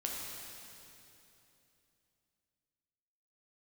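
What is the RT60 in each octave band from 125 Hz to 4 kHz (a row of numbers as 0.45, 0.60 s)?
3.5, 3.4, 3.2, 2.8, 2.8, 2.8 s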